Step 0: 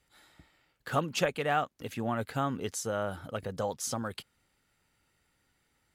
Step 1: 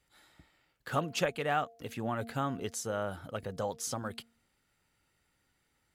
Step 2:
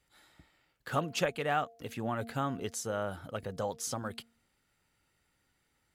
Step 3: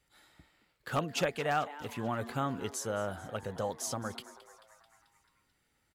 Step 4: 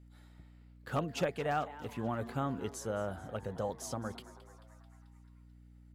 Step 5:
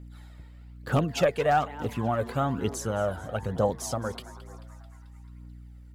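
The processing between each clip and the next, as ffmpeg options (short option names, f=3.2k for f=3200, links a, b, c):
-af "bandreject=f=230.4:t=h:w=4,bandreject=f=460.8:t=h:w=4,bandreject=f=691.2:t=h:w=4,volume=-2dB"
-af anull
-filter_complex "[0:a]asplit=7[a][b][c][d][e][f][g];[b]adelay=219,afreqshift=140,volume=-17dB[h];[c]adelay=438,afreqshift=280,volume=-21.3dB[i];[d]adelay=657,afreqshift=420,volume=-25.6dB[j];[e]adelay=876,afreqshift=560,volume=-29.9dB[k];[f]adelay=1095,afreqshift=700,volume=-34.2dB[l];[g]adelay=1314,afreqshift=840,volume=-38.5dB[m];[a][h][i][j][k][l][m]amix=inputs=7:normalize=0,aeval=exprs='0.0944*(abs(mod(val(0)/0.0944+3,4)-2)-1)':c=same"
-af "tiltshelf=f=1.1k:g=3.5,aeval=exprs='val(0)+0.00251*(sin(2*PI*60*n/s)+sin(2*PI*2*60*n/s)/2+sin(2*PI*3*60*n/s)/3+sin(2*PI*4*60*n/s)/4+sin(2*PI*5*60*n/s)/5)':c=same,volume=-3.5dB"
-af "aphaser=in_gain=1:out_gain=1:delay=2.2:decay=0.45:speed=1.1:type=triangular,volume=7.5dB"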